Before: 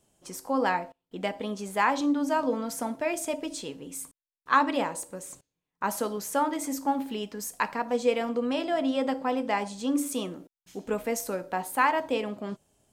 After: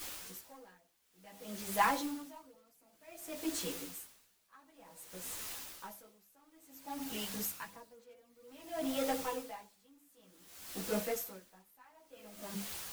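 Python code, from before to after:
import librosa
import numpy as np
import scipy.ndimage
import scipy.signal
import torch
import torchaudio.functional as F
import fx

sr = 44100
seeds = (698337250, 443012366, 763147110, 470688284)

p1 = scipy.signal.sosfilt(scipy.signal.butter(2, 44.0, 'highpass', fs=sr, output='sos'), x)
p2 = fx.peak_eq(p1, sr, hz=13000.0, db=14.0, octaves=0.31)
p3 = fx.hum_notches(p2, sr, base_hz=50, count=10)
p4 = p3 + 0.47 * np.pad(p3, (int(6.1 * sr / 1000.0), 0))[:len(p3)]
p5 = 10.0 ** (-26.5 / 20.0) * (np.abs((p4 / 10.0 ** (-26.5 / 20.0) + 3.0) % 4.0 - 2.0) - 1.0)
p6 = p4 + F.gain(torch.from_numpy(p5), -8.0).numpy()
p7 = fx.quant_dither(p6, sr, seeds[0], bits=6, dither='triangular')
p8 = fx.chorus_voices(p7, sr, voices=4, hz=1.4, base_ms=13, depth_ms=3.0, mix_pct=55)
p9 = p8 * 10.0 ** (-33 * (0.5 - 0.5 * np.cos(2.0 * np.pi * 0.55 * np.arange(len(p8)) / sr)) / 20.0)
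y = F.gain(torch.from_numpy(p9), -4.0).numpy()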